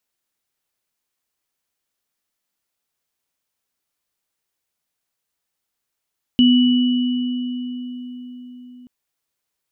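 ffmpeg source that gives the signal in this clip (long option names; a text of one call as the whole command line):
ffmpeg -f lavfi -i "aevalsrc='0.355*pow(10,-3*t/4.89)*sin(2*PI*248*t)+0.133*pow(10,-3*t/3.03)*sin(2*PI*2950*t)':duration=2.48:sample_rate=44100" out.wav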